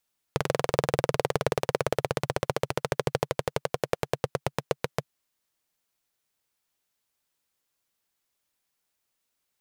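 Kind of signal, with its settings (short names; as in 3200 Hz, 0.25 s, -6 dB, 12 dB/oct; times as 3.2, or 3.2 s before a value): single-cylinder engine model, changing speed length 4.69 s, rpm 2600, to 800, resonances 140/470 Hz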